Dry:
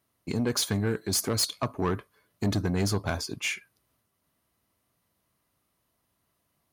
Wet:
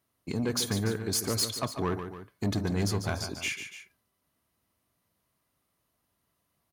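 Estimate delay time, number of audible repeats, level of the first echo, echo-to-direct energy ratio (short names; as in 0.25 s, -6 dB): 0.145 s, 2, -9.0 dB, -8.0 dB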